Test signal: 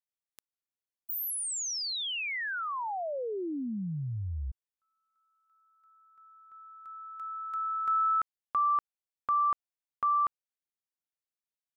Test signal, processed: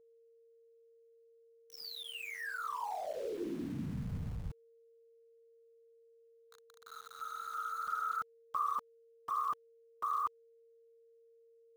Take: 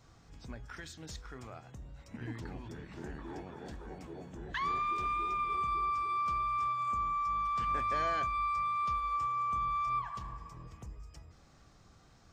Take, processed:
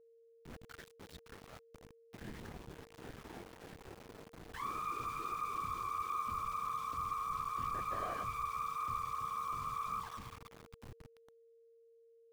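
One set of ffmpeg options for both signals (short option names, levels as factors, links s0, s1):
-filter_complex "[0:a]lowpass=f=3900:w=0.5412,lowpass=f=3900:w=1.3066,acrossover=split=1200[s0][s1];[s1]alimiter=level_in=4.47:limit=0.0631:level=0:latency=1,volume=0.224[s2];[s0][s2]amix=inputs=2:normalize=0,afftfilt=real='hypot(re,im)*cos(2*PI*random(0))':imag='hypot(re,im)*sin(2*PI*random(1))':win_size=512:overlap=0.75,aeval=exprs='val(0)*gte(abs(val(0)),0.00355)':c=same,aeval=exprs='val(0)+0.000708*sin(2*PI*460*n/s)':c=same,volume=1.12"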